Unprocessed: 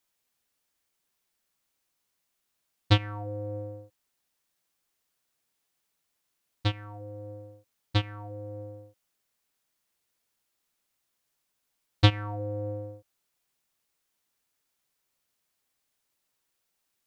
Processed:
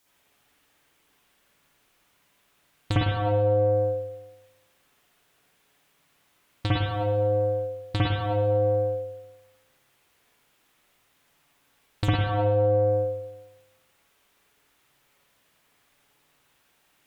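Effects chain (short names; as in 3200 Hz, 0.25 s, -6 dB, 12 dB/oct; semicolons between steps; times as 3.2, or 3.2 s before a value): added harmonics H 5 -11 dB, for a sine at -5 dBFS; compressor 10:1, threshold -29 dBFS, peak gain reduction 18 dB; spring tank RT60 1 s, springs 52/59 ms, chirp 75 ms, DRR -8 dB; gain +2 dB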